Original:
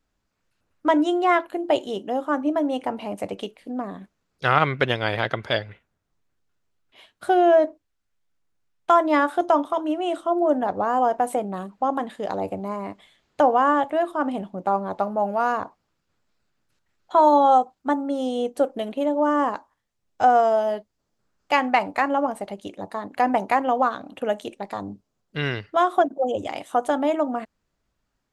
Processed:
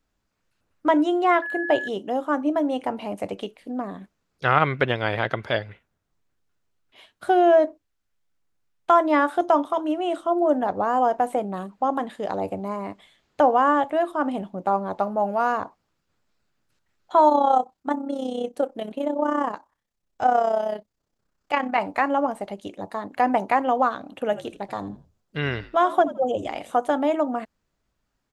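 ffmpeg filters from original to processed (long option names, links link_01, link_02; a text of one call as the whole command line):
ffmpeg -i in.wav -filter_complex "[0:a]asettb=1/sr,asplit=3[link_01][link_02][link_03];[link_01]atrim=end=1.424[link_04];[link_02]atrim=start=1.42:end=1.88,asetpts=PTS-STARTPTS,afade=type=in:duration=0.004:curve=qsin,afade=type=out:start_time=0.456:duration=0.004:curve=qsin,aeval=exprs='val(0)+0.0398*sin(2*PI*1700*n/s)':channel_layout=same[link_05];[link_03]atrim=start=1.876[link_06];[link_04][link_05]acrossfade=duration=0.004:curve1=hsin:curve2=qsin[link_07];[link_07][link_06]acrossfade=duration=0.004:curve1=qsin:curve2=hsin,asettb=1/sr,asplit=3[link_08][link_09][link_10];[link_08]atrim=end=17.294[link_11];[link_09]atrim=start=17.29:end=21.78,asetpts=PTS-STARTPTS,afade=type=in:duration=0.004:curve=qsin,afade=type=out:start_time=4.486:duration=0.004:curve=qsin,tremolo=f=32:d=0.667[link_12];[link_10]atrim=start=21.776[link_13];[link_11][link_12]acrossfade=duration=0.004:curve1=hsin:curve2=qsin[link_14];[link_14][link_13]acrossfade=duration=0.004:curve1=qsin:curve2=hsin,asplit=3[link_15][link_16][link_17];[link_15]afade=type=out:start_time=24.25:duration=0.02[link_18];[link_16]asplit=4[link_19][link_20][link_21][link_22];[link_20]adelay=83,afreqshift=-63,volume=-16dB[link_23];[link_21]adelay=166,afreqshift=-126,volume=-26.5dB[link_24];[link_22]adelay=249,afreqshift=-189,volume=-36.9dB[link_25];[link_19][link_23][link_24][link_25]amix=inputs=4:normalize=0,afade=type=in:start_time=24.25:duration=0.02,afade=type=out:start_time=26.75:duration=0.02[link_26];[link_17]afade=type=in:start_time=26.75:duration=0.02[link_27];[link_18][link_26][link_27]amix=inputs=3:normalize=0,acrossover=split=3300[link_28][link_29];[link_29]acompressor=threshold=-45dB:ratio=4:attack=1:release=60[link_30];[link_28][link_30]amix=inputs=2:normalize=0" out.wav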